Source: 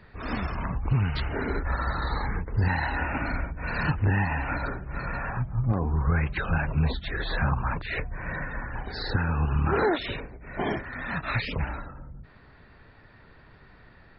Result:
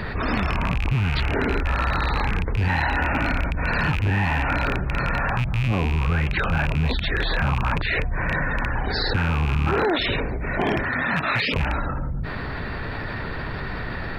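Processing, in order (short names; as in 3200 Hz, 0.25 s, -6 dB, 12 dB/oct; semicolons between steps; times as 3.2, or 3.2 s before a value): rattling part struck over -29 dBFS, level -23 dBFS; 10.85–11.53 HPF 76 Hz -> 200 Hz 12 dB/oct; fast leveller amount 70%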